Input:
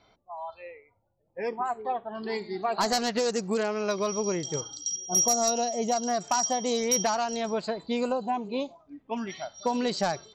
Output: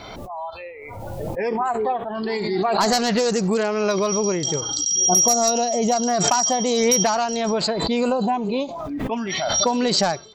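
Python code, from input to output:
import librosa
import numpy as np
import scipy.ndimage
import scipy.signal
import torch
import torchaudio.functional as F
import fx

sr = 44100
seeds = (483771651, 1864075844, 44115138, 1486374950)

y = fx.pre_swell(x, sr, db_per_s=25.0)
y = y * 10.0 ** (6.0 / 20.0)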